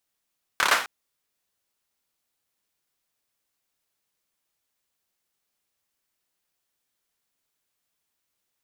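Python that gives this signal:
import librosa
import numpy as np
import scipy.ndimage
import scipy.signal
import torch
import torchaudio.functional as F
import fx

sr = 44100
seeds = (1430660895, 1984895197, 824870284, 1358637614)

y = fx.drum_clap(sr, seeds[0], length_s=0.26, bursts=5, spacing_ms=28, hz=1300.0, decay_s=0.43)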